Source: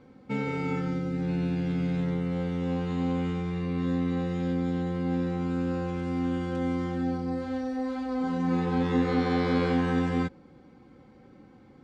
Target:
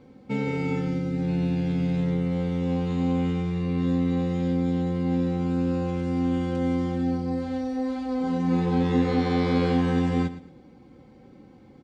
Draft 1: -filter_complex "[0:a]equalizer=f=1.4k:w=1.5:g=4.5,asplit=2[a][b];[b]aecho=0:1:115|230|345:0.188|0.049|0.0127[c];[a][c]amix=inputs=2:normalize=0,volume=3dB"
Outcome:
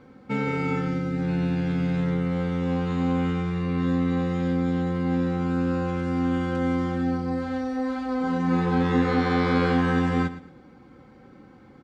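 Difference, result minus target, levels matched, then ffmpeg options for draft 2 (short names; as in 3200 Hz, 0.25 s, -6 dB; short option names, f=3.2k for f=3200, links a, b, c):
1000 Hz band +3.5 dB
-filter_complex "[0:a]equalizer=f=1.4k:w=1.5:g=-6,asplit=2[a][b];[b]aecho=0:1:115|230|345:0.188|0.049|0.0127[c];[a][c]amix=inputs=2:normalize=0,volume=3dB"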